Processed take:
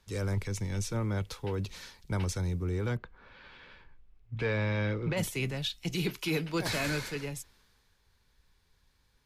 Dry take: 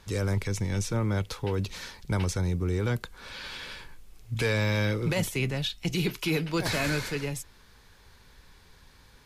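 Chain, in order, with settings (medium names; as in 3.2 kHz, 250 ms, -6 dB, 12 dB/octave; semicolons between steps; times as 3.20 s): 2.95–5.16 s: low-pass 2 kHz -> 3.4 kHz 12 dB/octave; three bands expanded up and down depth 40%; trim -4 dB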